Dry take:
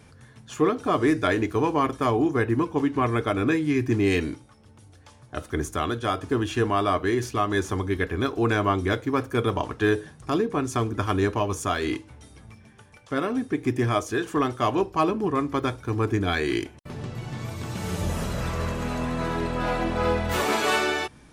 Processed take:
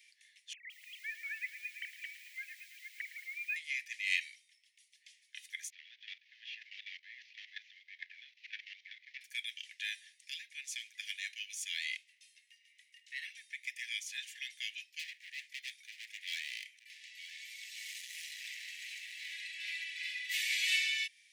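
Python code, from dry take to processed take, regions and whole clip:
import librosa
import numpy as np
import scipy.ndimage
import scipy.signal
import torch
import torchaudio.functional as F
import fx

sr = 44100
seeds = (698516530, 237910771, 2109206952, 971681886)

y = fx.chain(x, sr, fx.sine_speech(),
    fx.low_shelf(hz=270.0, db=11.0),
    fx.echo_crushed(ms=111, feedback_pct=80, bits=7, wet_db=-13), at=(0.53, 3.56))
y = fx.chain(y, sr, fx.cvsd(bps=32000),
    fx.bandpass_edges(low_hz=640.0, high_hz=2800.0),
    fx.level_steps(step_db=14), at=(5.7, 9.21))
y = fx.chain(y, sr, fx.doubler(ms=23.0, db=-13.0),
    fx.ring_mod(carrier_hz=490.0), at=(11.96, 13.25))
y = fx.chain(y, sr, fx.overload_stage(gain_db=28.0),
    fx.echo_single(ms=927, db=-13.5), at=(14.99, 19.32))
y = scipy.signal.sosfilt(scipy.signal.butter(16, 1900.0, 'highpass', fs=sr, output='sos'), y)
y = fx.peak_eq(y, sr, hz=12000.0, db=-7.5, octaves=1.9)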